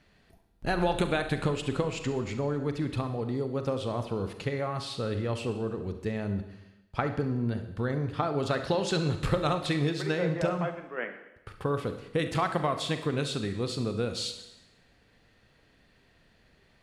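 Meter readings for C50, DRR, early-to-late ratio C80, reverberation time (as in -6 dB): 9.0 dB, 7.5 dB, 12.0 dB, 0.90 s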